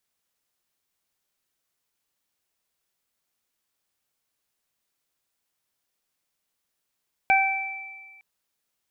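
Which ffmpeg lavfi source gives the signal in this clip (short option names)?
-f lavfi -i "aevalsrc='0.141*pow(10,-3*t/1.12)*sin(2*PI*776*t)+0.0531*pow(10,-3*t/0.64)*sin(2*PI*1552*t)+0.133*pow(10,-3*t/1.72)*sin(2*PI*2328*t)':d=0.91:s=44100"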